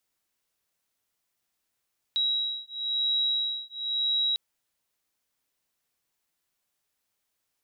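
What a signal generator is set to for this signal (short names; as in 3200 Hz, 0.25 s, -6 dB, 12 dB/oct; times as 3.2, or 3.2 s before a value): beating tones 3860 Hz, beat 0.98 Hz, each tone -28.5 dBFS 2.20 s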